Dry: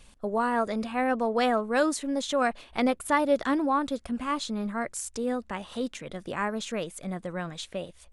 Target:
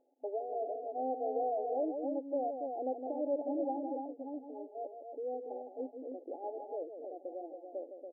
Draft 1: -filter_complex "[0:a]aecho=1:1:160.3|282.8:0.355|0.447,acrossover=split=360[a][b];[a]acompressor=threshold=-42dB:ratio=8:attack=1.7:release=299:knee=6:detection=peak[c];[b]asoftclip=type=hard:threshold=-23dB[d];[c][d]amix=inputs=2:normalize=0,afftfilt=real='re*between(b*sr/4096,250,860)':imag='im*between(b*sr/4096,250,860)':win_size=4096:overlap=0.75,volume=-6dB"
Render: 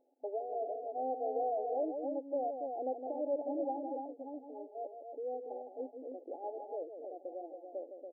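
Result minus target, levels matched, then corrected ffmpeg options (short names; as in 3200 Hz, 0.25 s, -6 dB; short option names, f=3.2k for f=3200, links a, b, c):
compressor: peak gain reduction +7.5 dB
-filter_complex "[0:a]aecho=1:1:160.3|282.8:0.355|0.447,acrossover=split=360[a][b];[a]acompressor=threshold=-33.5dB:ratio=8:attack=1.7:release=299:knee=6:detection=peak[c];[b]asoftclip=type=hard:threshold=-23dB[d];[c][d]amix=inputs=2:normalize=0,afftfilt=real='re*between(b*sr/4096,250,860)':imag='im*between(b*sr/4096,250,860)':win_size=4096:overlap=0.75,volume=-6dB"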